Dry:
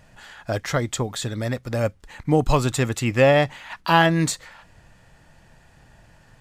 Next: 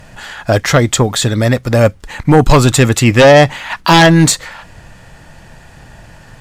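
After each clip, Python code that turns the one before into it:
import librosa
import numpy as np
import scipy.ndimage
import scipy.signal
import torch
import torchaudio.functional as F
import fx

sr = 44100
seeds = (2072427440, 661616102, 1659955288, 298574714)

y = fx.fold_sine(x, sr, drive_db=9, ceiling_db=-3.0)
y = y * librosa.db_to_amplitude(1.5)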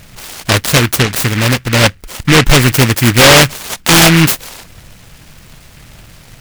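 y = fx.noise_mod_delay(x, sr, seeds[0], noise_hz=1900.0, depth_ms=0.32)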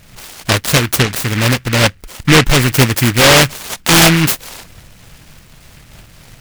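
y = fx.am_noise(x, sr, seeds[1], hz=5.7, depth_pct=55)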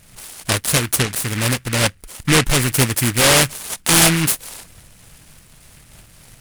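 y = fx.peak_eq(x, sr, hz=9800.0, db=10.0, octaves=0.76)
y = y * librosa.db_to_amplitude(-6.5)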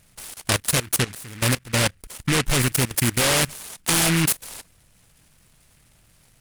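y = fx.level_steps(x, sr, step_db=19)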